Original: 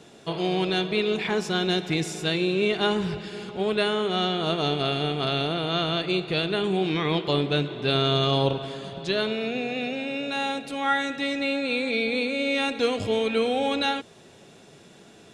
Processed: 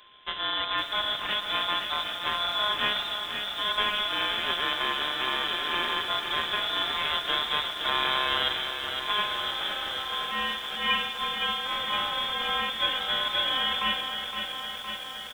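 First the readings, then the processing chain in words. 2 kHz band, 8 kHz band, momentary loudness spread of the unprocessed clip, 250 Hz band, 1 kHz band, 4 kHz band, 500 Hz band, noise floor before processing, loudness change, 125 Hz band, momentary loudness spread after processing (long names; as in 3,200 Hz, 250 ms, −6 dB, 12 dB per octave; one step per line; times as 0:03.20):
+1.0 dB, −5.0 dB, 5 LU, −17.0 dB, +1.0 dB, +4.0 dB, −13.5 dB, −51 dBFS, −1.5 dB, −20.0 dB, 5 LU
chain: samples sorted by size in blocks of 16 samples
high-pass filter 620 Hz 6 dB per octave
slap from a distant wall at 23 metres, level −14 dB
voice inversion scrambler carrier 3,800 Hz
feedback echo at a low word length 514 ms, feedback 80%, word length 8 bits, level −7 dB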